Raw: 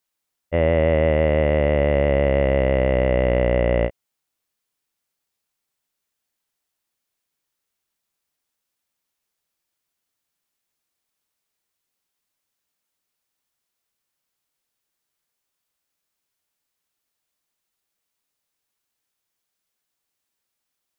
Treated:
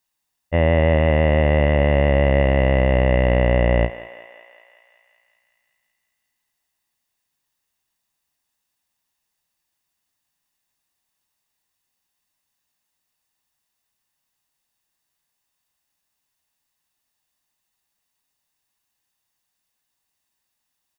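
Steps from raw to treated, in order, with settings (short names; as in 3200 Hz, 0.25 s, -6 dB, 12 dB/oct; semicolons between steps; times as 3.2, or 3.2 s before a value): comb 1.1 ms, depth 40%; on a send: thinning echo 0.188 s, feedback 70%, high-pass 520 Hz, level -13.5 dB; on the sum: ending taper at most 270 dB/s; gain +2 dB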